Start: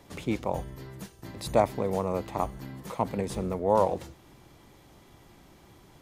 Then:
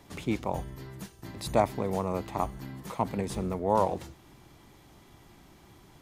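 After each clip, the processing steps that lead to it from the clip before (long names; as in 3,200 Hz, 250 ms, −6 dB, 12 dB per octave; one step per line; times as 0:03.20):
parametric band 520 Hz −4.5 dB 0.45 octaves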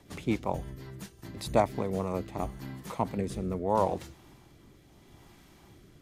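rotating-speaker cabinet horn 5.5 Hz, later 0.75 Hz, at 0:01.54
level +1 dB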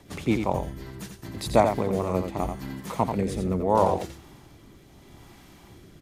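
single-tap delay 87 ms −6.5 dB
level +5 dB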